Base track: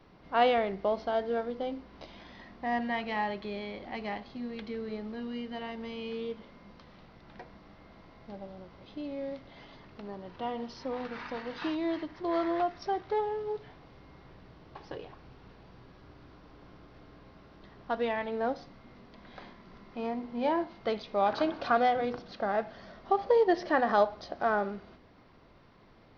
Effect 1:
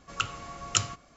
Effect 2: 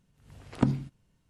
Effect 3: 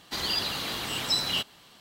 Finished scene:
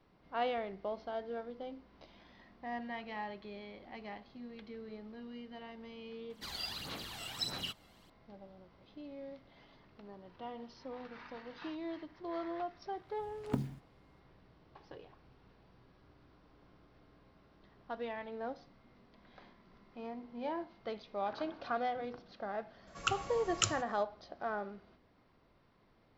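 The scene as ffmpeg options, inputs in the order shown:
-filter_complex "[0:a]volume=0.316[s0];[3:a]aphaser=in_gain=1:out_gain=1:delay=1.5:decay=0.6:speed=1.6:type=sinusoidal[s1];[2:a]acrusher=bits=7:mode=log:mix=0:aa=0.000001[s2];[1:a]alimiter=limit=0.562:level=0:latency=1:release=375[s3];[s1]atrim=end=1.8,asetpts=PTS-STARTPTS,volume=0.188,afade=t=in:d=0.004:c=hsin,afade=t=out:st=1.796:d=0.004:c=hsin,adelay=6300[s4];[s2]atrim=end=1.29,asetpts=PTS-STARTPTS,volume=0.316,afade=t=in:d=0.004:c=hsin,afade=t=out:st=1.286:d=0.004:c=hsin,adelay=12910[s5];[s3]atrim=end=1.16,asetpts=PTS-STARTPTS,volume=0.631,afade=t=in:d=0.004:c=hsin,afade=t=out:st=1.156:d=0.004:c=hsin,adelay=22870[s6];[s0][s4][s5][s6]amix=inputs=4:normalize=0"

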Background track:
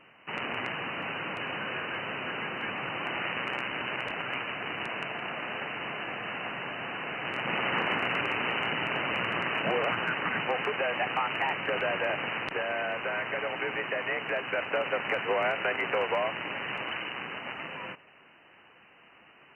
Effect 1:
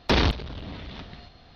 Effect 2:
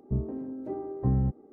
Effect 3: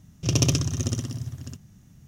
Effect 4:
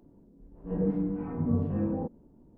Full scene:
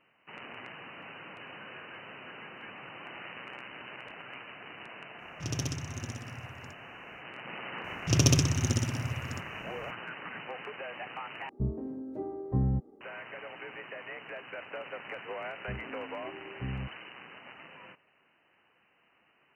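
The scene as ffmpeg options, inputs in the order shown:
-filter_complex "[3:a]asplit=2[s0][s1];[2:a]asplit=2[s2][s3];[0:a]volume=0.266,asplit=2[s4][s5];[s4]atrim=end=11.494[s6];[s2]atrim=end=1.52,asetpts=PTS-STARTPTS,volume=0.75[s7];[s5]atrim=start=13.006[s8];[s0]atrim=end=2.07,asetpts=PTS-STARTPTS,volume=0.237,afade=t=in:d=0.05,afade=t=out:st=2.02:d=0.05,adelay=227997S[s9];[s1]atrim=end=2.07,asetpts=PTS-STARTPTS,volume=0.841,afade=t=in:d=0.004:c=hsin,afade=t=out:st=2.066:d=0.004:c=hsin,adelay=7840[s10];[s3]atrim=end=1.52,asetpts=PTS-STARTPTS,volume=0.266,afade=t=in:d=0.004:c=hsin,afade=t=out:st=1.516:d=0.004:c=hsin,adelay=15570[s11];[s6][s7]acrossfade=d=0.004:c1=hsin:c2=hsin[s12];[s12][s8]acrossfade=d=0.004:c1=hsin:c2=hsin[s13];[s13][s9][s10][s11]amix=inputs=4:normalize=0"

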